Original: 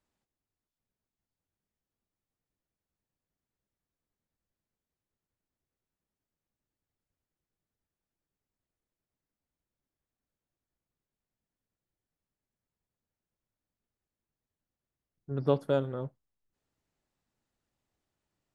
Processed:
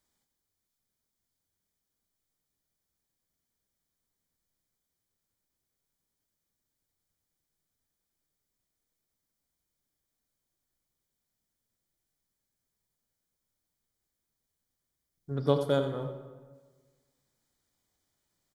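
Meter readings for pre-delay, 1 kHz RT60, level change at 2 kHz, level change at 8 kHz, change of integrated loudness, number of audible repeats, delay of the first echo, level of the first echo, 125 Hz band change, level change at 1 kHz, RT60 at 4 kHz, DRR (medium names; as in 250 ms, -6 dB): 22 ms, 1.4 s, +3.0 dB, no reading, +1.0 dB, 1, 90 ms, -11.5 dB, +1.0 dB, +2.0 dB, 0.95 s, 7.0 dB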